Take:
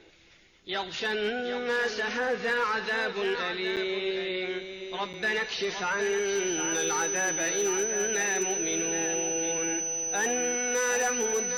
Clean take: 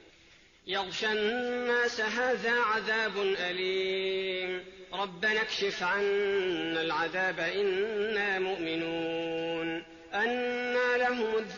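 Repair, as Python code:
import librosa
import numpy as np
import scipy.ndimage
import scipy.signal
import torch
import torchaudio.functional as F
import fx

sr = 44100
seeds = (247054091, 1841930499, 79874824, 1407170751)

y = fx.fix_declip(x, sr, threshold_db=-21.0)
y = fx.notch(y, sr, hz=6000.0, q=30.0)
y = fx.fix_interpolate(y, sr, at_s=(3.76, 5.13), length_ms=8.3)
y = fx.fix_echo_inverse(y, sr, delay_ms=762, level_db=-8.5)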